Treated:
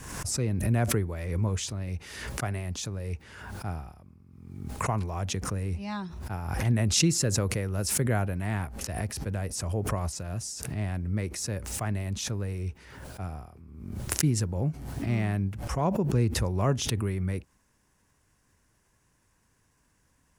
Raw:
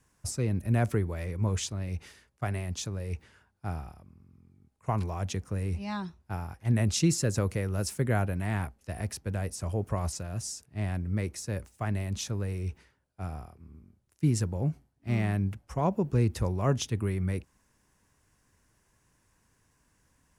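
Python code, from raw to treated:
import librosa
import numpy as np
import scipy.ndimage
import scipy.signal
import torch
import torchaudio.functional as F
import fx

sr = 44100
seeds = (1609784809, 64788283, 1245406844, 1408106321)

y = fx.pre_swell(x, sr, db_per_s=47.0)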